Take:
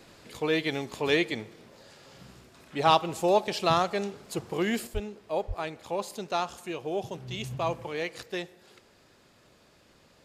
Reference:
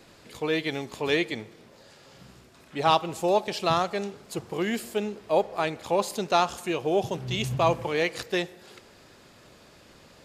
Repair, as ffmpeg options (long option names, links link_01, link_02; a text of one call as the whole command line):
ffmpeg -i in.wav -filter_complex "[0:a]asplit=3[link_01][link_02][link_03];[link_01]afade=type=out:start_time=4.93:duration=0.02[link_04];[link_02]highpass=frequency=140:width=0.5412,highpass=frequency=140:width=1.3066,afade=type=in:start_time=4.93:duration=0.02,afade=type=out:start_time=5.05:duration=0.02[link_05];[link_03]afade=type=in:start_time=5.05:duration=0.02[link_06];[link_04][link_05][link_06]amix=inputs=3:normalize=0,asplit=3[link_07][link_08][link_09];[link_07]afade=type=out:start_time=5.47:duration=0.02[link_10];[link_08]highpass=frequency=140:width=0.5412,highpass=frequency=140:width=1.3066,afade=type=in:start_time=5.47:duration=0.02,afade=type=out:start_time=5.59:duration=0.02[link_11];[link_09]afade=type=in:start_time=5.59:duration=0.02[link_12];[link_10][link_11][link_12]amix=inputs=3:normalize=0,asetnsamples=nb_out_samples=441:pad=0,asendcmd='4.87 volume volume 7dB',volume=0dB" out.wav